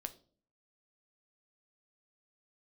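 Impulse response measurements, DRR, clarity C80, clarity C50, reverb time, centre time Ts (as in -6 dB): 8.0 dB, 20.0 dB, 16.5 dB, 0.45 s, 4 ms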